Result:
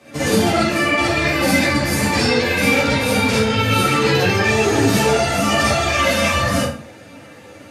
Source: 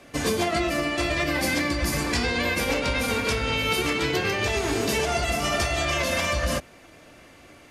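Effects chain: high-pass 87 Hz 24 dB/octave; bass shelf 140 Hz +7.5 dB; reverberation RT60 0.50 s, pre-delay 42 ms, DRR -7 dB; three-phase chorus; trim +3.5 dB

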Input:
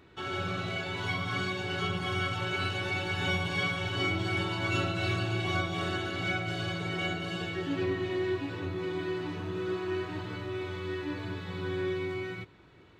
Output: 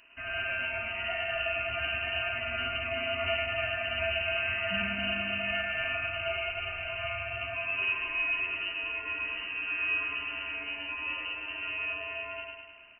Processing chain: feedback delay 103 ms, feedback 60%, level -3 dB; frequency inversion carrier 2.9 kHz; trim -2 dB

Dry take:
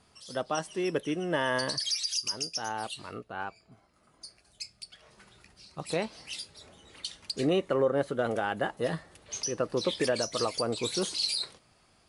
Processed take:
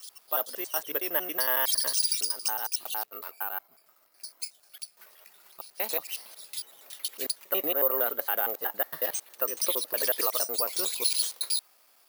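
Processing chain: slices played last to first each 92 ms, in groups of 3; high-pass 580 Hz 12 dB/octave; crackle 66 per s -57 dBFS; careless resampling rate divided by 3×, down none, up zero stuff

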